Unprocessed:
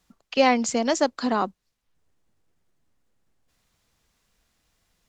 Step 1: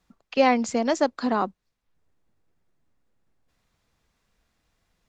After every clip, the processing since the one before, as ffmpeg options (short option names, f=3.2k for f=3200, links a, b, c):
-af "highshelf=f=4.4k:g=-9,bandreject=f=3k:w=25"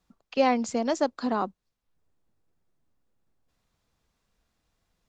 -af "equalizer=f=2k:w=1.7:g=-3.5,volume=-3dB"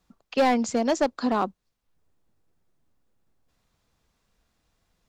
-af "asoftclip=type=hard:threshold=-19dB,volume=3.5dB"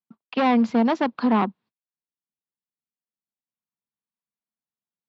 -af "aeval=exprs='clip(val(0),-1,0.0376)':c=same,agate=range=-32dB:threshold=-54dB:ratio=16:detection=peak,highpass=f=120:w=0.5412,highpass=f=120:w=1.3066,equalizer=f=220:t=q:w=4:g=7,equalizer=f=560:t=q:w=4:g=-4,equalizer=f=960:t=q:w=4:g=5,lowpass=f=3.8k:w=0.5412,lowpass=f=3.8k:w=1.3066,volume=3dB"